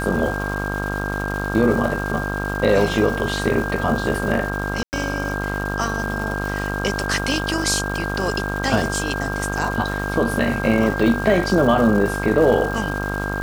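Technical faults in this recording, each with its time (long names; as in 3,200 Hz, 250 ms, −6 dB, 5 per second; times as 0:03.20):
mains buzz 50 Hz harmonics 28 −26 dBFS
surface crackle 560 per second −28 dBFS
whistle 1,600 Hz −27 dBFS
0:04.83–0:04.93: drop-out 99 ms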